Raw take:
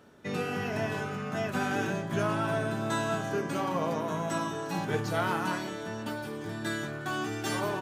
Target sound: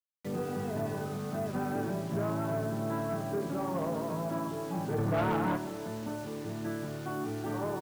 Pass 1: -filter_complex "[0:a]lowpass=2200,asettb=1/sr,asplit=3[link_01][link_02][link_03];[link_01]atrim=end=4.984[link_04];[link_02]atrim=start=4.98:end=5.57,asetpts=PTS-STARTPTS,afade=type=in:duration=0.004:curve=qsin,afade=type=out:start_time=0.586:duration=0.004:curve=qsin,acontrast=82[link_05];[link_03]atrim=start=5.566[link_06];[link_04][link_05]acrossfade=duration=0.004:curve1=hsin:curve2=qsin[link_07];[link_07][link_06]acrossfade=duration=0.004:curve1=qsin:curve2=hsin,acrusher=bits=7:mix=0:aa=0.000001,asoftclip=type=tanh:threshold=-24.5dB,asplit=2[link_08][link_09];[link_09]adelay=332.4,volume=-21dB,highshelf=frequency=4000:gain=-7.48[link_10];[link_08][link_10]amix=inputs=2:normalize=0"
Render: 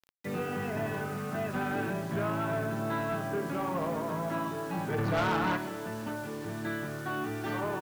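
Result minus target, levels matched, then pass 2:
2,000 Hz band +6.5 dB
-filter_complex "[0:a]lowpass=910,asettb=1/sr,asplit=3[link_01][link_02][link_03];[link_01]atrim=end=4.984[link_04];[link_02]atrim=start=4.98:end=5.57,asetpts=PTS-STARTPTS,afade=type=in:duration=0.004:curve=qsin,afade=type=out:start_time=0.586:duration=0.004:curve=qsin,acontrast=82[link_05];[link_03]atrim=start=5.566[link_06];[link_04][link_05]acrossfade=duration=0.004:curve1=hsin:curve2=qsin[link_07];[link_07][link_06]acrossfade=duration=0.004:curve1=qsin:curve2=hsin,acrusher=bits=7:mix=0:aa=0.000001,asoftclip=type=tanh:threshold=-24.5dB,asplit=2[link_08][link_09];[link_09]adelay=332.4,volume=-21dB,highshelf=frequency=4000:gain=-7.48[link_10];[link_08][link_10]amix=inputs=2:normalize=0"

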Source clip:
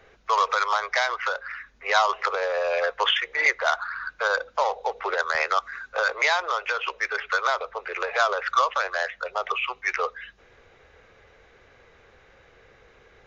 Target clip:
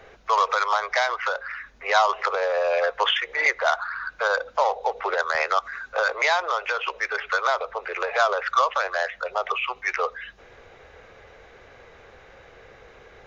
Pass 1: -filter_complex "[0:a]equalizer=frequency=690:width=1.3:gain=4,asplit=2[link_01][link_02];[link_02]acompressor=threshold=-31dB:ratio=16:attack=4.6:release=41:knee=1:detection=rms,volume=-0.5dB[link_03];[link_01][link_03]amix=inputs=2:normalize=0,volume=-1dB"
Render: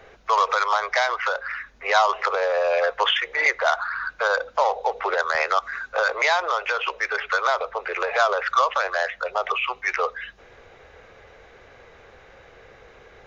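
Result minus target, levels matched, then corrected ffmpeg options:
downward compressor: peak gain reduction −11 dB
-filter_complex "[0:a]equalizer=frequency=690:width=1.3:gain=4,asplit=2[link_01][link_02];[link_02]acompressor=threshold=-42.5dB:ratio=16:attack=4.6:release=41:knee=1:detection=rms,volume=-0.5dB[link_03];[link_01][link_03]amix=inputs=2:normalize=0,volume=-1dB"

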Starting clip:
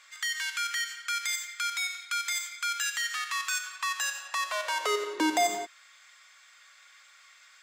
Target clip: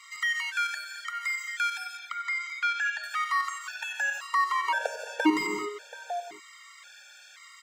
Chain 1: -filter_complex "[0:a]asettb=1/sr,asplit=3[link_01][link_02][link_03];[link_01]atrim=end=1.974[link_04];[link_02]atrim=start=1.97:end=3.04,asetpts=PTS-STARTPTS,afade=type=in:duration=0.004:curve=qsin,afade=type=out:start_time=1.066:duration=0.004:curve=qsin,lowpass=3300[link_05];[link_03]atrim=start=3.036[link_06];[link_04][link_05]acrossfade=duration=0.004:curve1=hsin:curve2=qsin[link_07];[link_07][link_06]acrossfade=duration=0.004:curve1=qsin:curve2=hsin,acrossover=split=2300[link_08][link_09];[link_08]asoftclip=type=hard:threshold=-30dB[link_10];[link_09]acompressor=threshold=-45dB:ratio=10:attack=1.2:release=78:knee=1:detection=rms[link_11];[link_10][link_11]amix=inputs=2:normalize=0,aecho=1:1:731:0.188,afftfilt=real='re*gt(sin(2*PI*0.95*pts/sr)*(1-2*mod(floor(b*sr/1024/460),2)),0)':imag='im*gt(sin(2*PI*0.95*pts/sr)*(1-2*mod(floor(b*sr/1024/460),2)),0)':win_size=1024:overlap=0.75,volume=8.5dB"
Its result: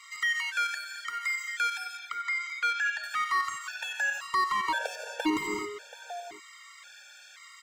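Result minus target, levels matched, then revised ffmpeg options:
hard clipping: distortion +14 dB
-filter_complex "[0:a]asettb=1/sr,asplit=3[link_01][link_02][link_03];[link_01]atrim=end=1.974[link_04];[link_02]atrim=start=1.97:end=3.04,asetpts=PTS-STARTPTS,afade=type=in:duration=0.004:curve=qsin,afade=type=out:start_time=1.066:duration=0.004:curve=qsin,lowpass=3300[link_05];[link_03]atrim=start=3.036[link_06];[link_04][link_05]acrossfade=duration=0.004:curve1=hsin:curve2=qsin[link_07];[link_07][link_06]acrossfade=duration=0.004:curve1=qsin:curve2=hsin,acrossover=split=2300[link_08][link_09];[link_08]asoftclip=type=hard:threshold=-21.5dB[link_10];[link_09]acompressor=threshold=-45dB:ratio=10:attack=1.2:release=78:knee=1:detection=rms[link_11];[link_10][link_11]amix=inputs=2:normalize=0,aecho=1:1:731:0.188,afftfilt=real='re*gt(sin(2*PI*0.95*pts/sr)*(1-2*mod(floor(b*sr/1024/460),2)),0)':imag='im*gt(sin(2*PI*0.95*pts/sr)*(1-2*mod(floor(b*sr/1024/460),2)),0)':win_size=1024:overlap=0.75,volume=8.5dB"

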